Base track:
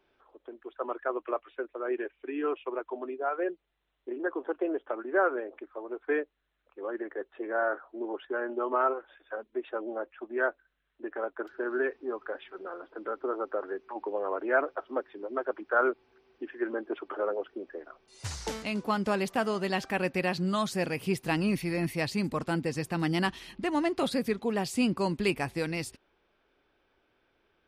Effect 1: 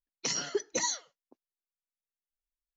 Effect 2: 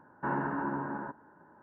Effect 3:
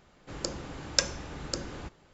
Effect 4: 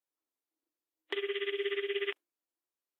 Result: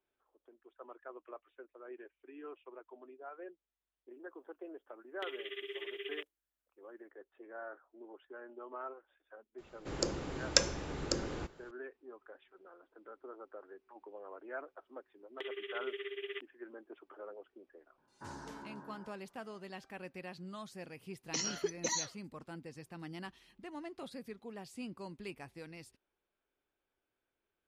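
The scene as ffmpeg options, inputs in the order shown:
-filter_complex "[4:a]asplit=2[a][b];[0:a]volume=-17.5dB[c];[a]highshelf=f=3.7k:g=10[d];[3:a]equalizer=f=400:t=o:w=0.86:g=5.5[e];[b]acontrast=37[f];[d]atrim=end=2.99,asetpts=PTS-STARTPTS,volume=-10.5dB,afade=t=in:d=0.004:c=hsin,afade=t=out:st=2.986:d=0.004:c=hsin,adelay=4100[g];[e]atrim=end=2.13,asetpts=PTS-STARTPTS,volume=-1.5dB,afade=t=in:d=0.004:c=hsin,afade=t=out:st=2.126:d=0.004:c=hsin,adelay=9580[h];[f]atrim=end=2.99,asetpts=PTS-STARTPTS,volume=-14dB,afade=t=in:d=0.004:c=hsin,afade=t=out:st=2.986:d=0.004:c=hsin,adelay=629748S[i];[2:a]atrim=end=1.62,asetpts=PTS-STARTPTS,volume=-16.5dB,afade=t=in:d=0.004:c=hsin,afade=t=out:st=1.616:d=0.004:c=hsin,adelay=17980[j];[1:a]atrim=end=2.76,asetpts=PTS-STARTPTS,volume=-4.5dB,afade=t=in:d=0.004:c=hsin,afade=t=out:st=2.756:d=0.004:c=hsin,adelay=21090[k];[c][g][h][i][j][k]amix=inputs=6:normalize=0"

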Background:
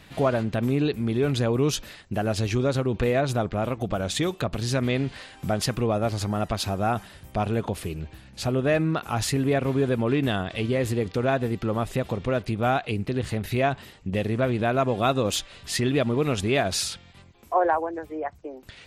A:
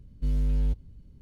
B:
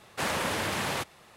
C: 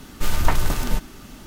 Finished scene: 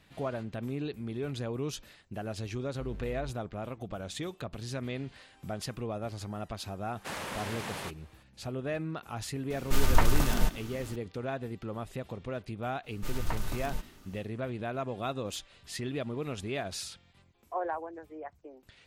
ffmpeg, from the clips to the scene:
-filter_complex "[3:a]asplit=2[a][b];[0:a]volume=-12dB[c];[1:a]acrossover=split=520 2600:gain=0.224 1 0.251[d][e][f];[d][e][f]amix=inputs=3:normalize=0,atrim=end=1.21,asetpts=PTS-STARTPTS,volume=-4.5dB,afade=t=in:d=0.004:c=hsin,afade=t=out:st=1.206:d=0.004:c=hsin,adelay=2570[g];[2:a]atrim=end=1.36,asetpts=PTS-STARTPTS,volume=-8.5dB,afade=t=in:d=0.004:c=hsin,afade=t=out:st=1.356:d=0.004:c=hsin,adelay=6870[h];[a]atrim=end=1.46,asetpts=PTS-STARTPTS,volume=-4dB,afade=t=in:d=0.004:c=hsin,afade=t=out:st=1.456:d=0.004:c=hsin,adelay=9500[i];[b]atrim=end=1.46,asetpts=PTS-STARTPTS,volume=-14dB,afade=t=in:d=0.1,afade=t=out:st=1.36:d=0.1,adelay=12820[j];[c][g][h][i][j]amix=inputs=5:normalize=0"

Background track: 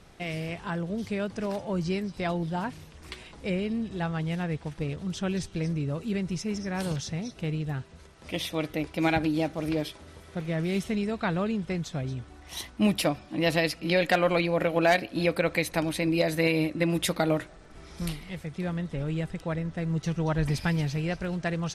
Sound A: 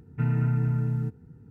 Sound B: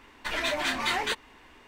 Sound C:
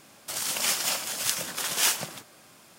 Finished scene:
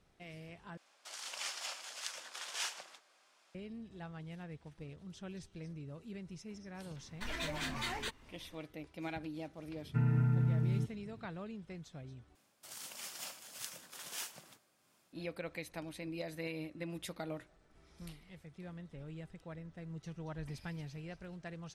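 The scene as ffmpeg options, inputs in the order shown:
-filter_complex "[3:a]asplit=2[a][b];[0:a]volume=-17dB[c];[a]highpass=610,lowpass=6.4k[d];[2:a]bass=f=250:g=12,treble=f=4k:g=4[e];[b]tremolo=f=2.3:d=0.34[f];[c]asplit=3[g][h][i];[g]atrim=end=0.774[j];[d]atrim=end=2.78,asetpts=PTS-STARTPTS,volume=-12.5dB[k];[h]atrim=start=3.546:end=12.354[l];[f]atrim=end=2.78,asetpts=PTS-STARTPTS,volume=-17.5dB[m];[i]atrim=start=15.126[n];[e]atrim=end=1.67,asetpts=PTS-STARTPTS,volume=-12.5dB,afade=t=in:d=0.004:c=hsin,afade=t=out:st=1.666:d=0.004:c=hsin,adelay=6960[o];[1:a]atrim=end=1.5,asetpts=PTS-STARTPTS,volume=-5.5dB,afade=t=in:d=0.004:c=hsin,afade=t=out:st=1.496:d=0.004:c=hsin,adelay=9760[p];[j][k]acrossfade=d=0.004:c1=hsin:c2=hsin[q];[q][l]acrossfade=d=0.004:c1=hsin:c2=hsin[r];[r][m]acrossfade=d=0.004:c1=hsin:c2=hsin[s];[s][n]acrossfade=d=0.004:c1=hsin:c2=hsin[t];[t][o][p]amix=inputs=3:normalize=0"

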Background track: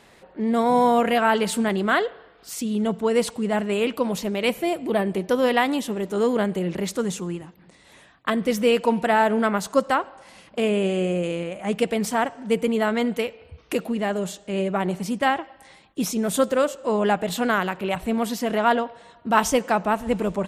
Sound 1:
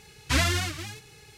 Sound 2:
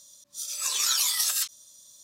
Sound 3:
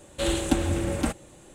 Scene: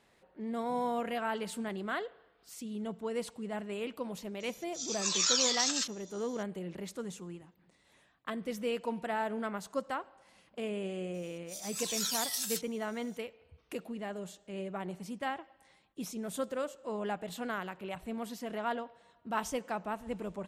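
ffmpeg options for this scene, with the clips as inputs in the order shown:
-filter_complex "[2:a]asplit=2[a][b];[0:a]volume=-15dB[c];[a]aresample=16000,aresample=44100[d];[b]bandreject=f=1.2k:w=6[e];[d]atrim=end=2.03,asetpts=PTS-STARTPTS,volume=-2.5dB,afade=t=in:d=0.004:c=hsin,afade=t=out:st=2.026:d=0.004:c=hsin,adelay=4400[f];[e]atrim=end=2.03,asetpts=PTS-STARTPTS,volume=-9.5dB,afade=t=in:d=0.004:c=hsin,afade=t=out:st=2.026:d=0.004:c=hsin,adelay=491274S[g];[c][f][g]amix=inputs=3:normalize=0"

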